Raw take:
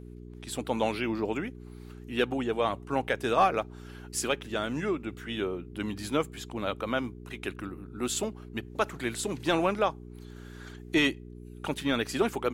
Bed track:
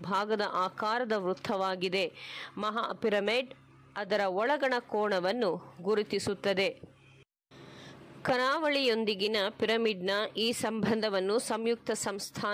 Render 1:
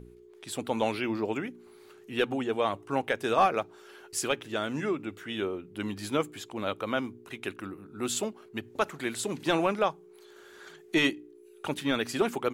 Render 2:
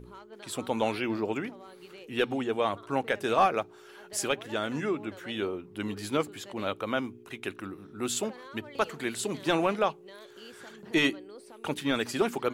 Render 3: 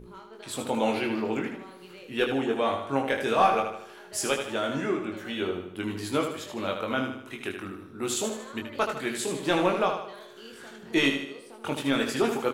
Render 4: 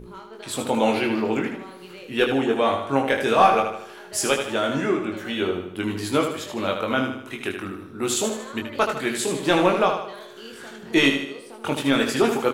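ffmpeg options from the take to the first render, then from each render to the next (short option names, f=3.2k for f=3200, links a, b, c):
-af "bandreject=f=60:t=h:w=4,bandreject=f=120:t=h:w=4,bandreject=f=180:t=h:w=4,bandreject=f=240:t=h:w=4,bandreject=f=300:t=h:w=4"
-filter_complex "[1:a]volume=-19.5dB[a];[0:a][a]amix=inputs=2:normalize=0"
-filter_complex "[0:a]asplit=2[a][b];[b]adelay=22,volume=-4.5dB[c];[a][c]amix=inputs=2:normalize=0,aecho=1:1:77|154|231|308|385|462:0.447|0.21|0.0987|0.0464|0.0218|0.0102"
-af "volume=5.5dB"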